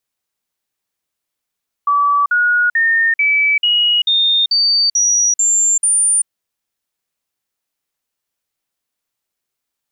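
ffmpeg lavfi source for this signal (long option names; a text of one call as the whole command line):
ffmpeg -f lavfi -i "aevalsrc='0.299*clip(min(mod(t,0.44),0.39-mod(t,0.44))/0.005,0,1)*sin(2*PI*1150*pow(2,floor(t/0.44)/3)*mod(t,0.44))':duration=4.4:sample_rate=44100" out.wav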